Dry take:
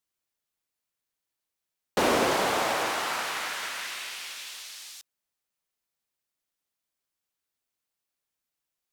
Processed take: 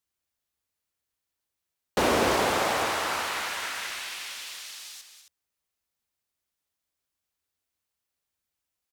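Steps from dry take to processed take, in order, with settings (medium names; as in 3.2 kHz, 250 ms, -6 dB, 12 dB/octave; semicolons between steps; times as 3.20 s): peaking EQ 71 Hz +10.5 dB 0.84 oct; loudspeakers at several distances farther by 69 m -10 dB, 92 m -11 dB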